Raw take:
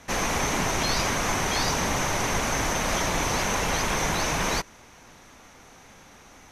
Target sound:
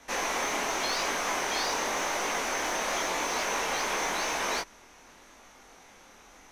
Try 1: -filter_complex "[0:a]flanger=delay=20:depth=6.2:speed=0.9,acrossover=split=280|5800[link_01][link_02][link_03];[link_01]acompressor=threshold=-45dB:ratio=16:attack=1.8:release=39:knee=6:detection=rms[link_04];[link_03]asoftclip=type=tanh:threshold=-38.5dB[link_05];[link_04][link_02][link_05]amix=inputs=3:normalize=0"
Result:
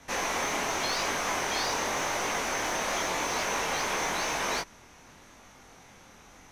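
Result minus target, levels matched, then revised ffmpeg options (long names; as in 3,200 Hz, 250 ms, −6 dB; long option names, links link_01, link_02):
125 Hz band +6.0 dB
-filter_complex "[0:a]flanger=delay=20:depth=6.2:speed=0.9,acrossover=split=280|5800[link_01][link_02][link_03];[link_01]acompressor=threshold=-45dB:ratio=16:attack=1.8:release=39:knee=6:detection=rms,equalizer=frequency=120:width=0.83:gain=-12.5[link_04];[link_03]asoftclip=type=tanh:threshold=-38.5dB[link_05];[link_04][link_02][link_05]amix=inputs=3:normalize=0"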